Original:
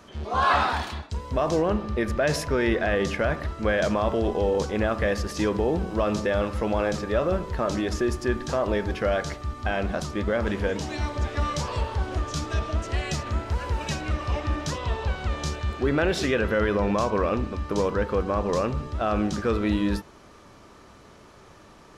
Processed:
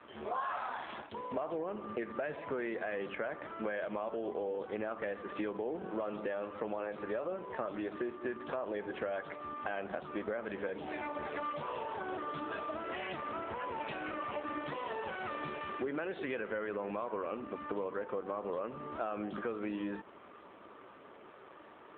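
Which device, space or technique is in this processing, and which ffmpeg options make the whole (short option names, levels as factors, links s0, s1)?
voicemail: -af "highpass=300,lowpass=3100,acompressor=threshold=0.02:ratio=6" -ar 8000 -c:a libopencore_amrnb -b:a 7400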